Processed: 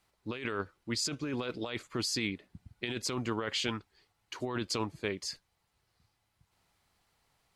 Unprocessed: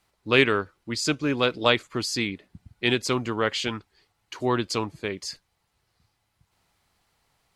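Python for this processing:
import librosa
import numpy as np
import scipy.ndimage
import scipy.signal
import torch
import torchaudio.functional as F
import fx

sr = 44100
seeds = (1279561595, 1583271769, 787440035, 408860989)

y = fx.over_compress(x, sr, threshold_db=-27.0, ratio=-1.0)
y = y * librosa.db_to_amplitude(-7.0)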